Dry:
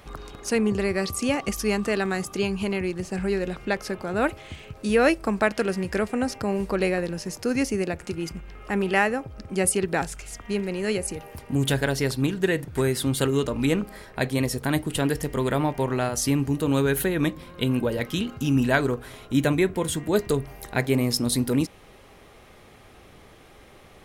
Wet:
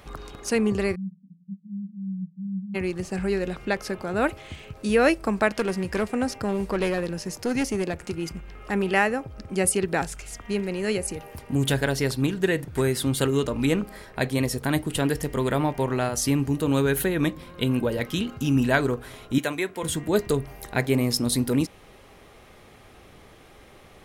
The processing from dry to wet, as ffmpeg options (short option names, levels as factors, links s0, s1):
-filter_complex "[0:a]asplit=3[s0][s1][s2];[s0]afade=t=out:st=0.94:d=0.02[s3];[s1]asuperpass=centerf=180:order=8:qfactor=4.8,afade=t=in:st=0.94:d=0.02,afade=t=out:st=2.74:d=0.02[s4];[s2]afade=t=in:st=2.74:d=0.02[s5];[s3][s4][s5]amix=inputs=3:normalize=0,asettb=1/sr,asplit=3[s6][s7][s8];[s6]atrim=end=5.594[s9];[s7]atrim=start=5.59:end=8.72,asetpts=PTS-STARTPTS,afade=t=in:d=0.004:c=qsin,afade=t=out:st=3.126:d=0.004:c=qsin,aeval=exprs='clip(val(0),-1,0.0841)':c=same[s10];[s8]atrim=start=8.716[s11];[s9][s10]acrossfade=d=0.004:c1=hsin:c2=qsin[s12];[s12][s11]acrossfade=d=0.004:c1=qsin:c2=hsin,asettb=1/sr,asplit=3[s13][s14][s15];[s13]atrim=end=19.384[s16];[s14]atrim=start=19.38:end=19.83,asetpts=PTS-STARTPTS,afade=t=in:d=0.004:c=qsin,afade=t=out:st=0.446:d=0.004:c=qsin,highpass=f=740:p=1[s17];[s15]atrim=start=19.826[s18];[s16][s17]acrossfade=d=0.004:c1=hsin:c2=qsin[s19];[s19][s18]acrossfade=d=0.004:c1=qsin:c2=hsin"